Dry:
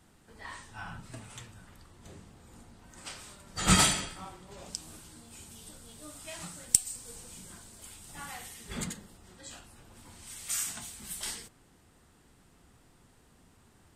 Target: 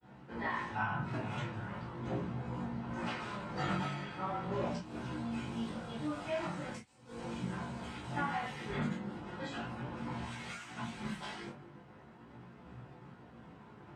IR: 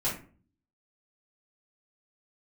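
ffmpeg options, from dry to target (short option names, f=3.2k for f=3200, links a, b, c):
-filter_complex "[0:a]acompressor=threshold=-44dB:ratio=20,agate=range=-33dB:threshold=-56dB:ratio=3:detection=peak,highpass=120,lowpass=2.2k[a];[1:a]atrim=start_sample=2205,atrim=end_sample=3528[b];[a][b]afir=irnorm=-1:irlink=0,flanger=delay=16:depth=4.2:speed=0.39,volume=9.5dB"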